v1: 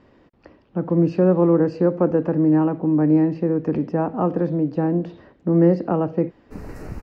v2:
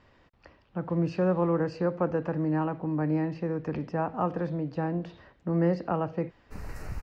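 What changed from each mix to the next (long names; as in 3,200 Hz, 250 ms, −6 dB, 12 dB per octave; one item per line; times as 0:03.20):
master: add parametric band 300 Hz −12.5 dB 2.2 octaves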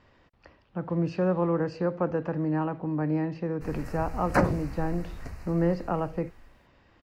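background: entry −2.90 s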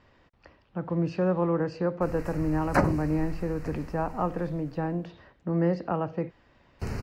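background: entry −1.60 s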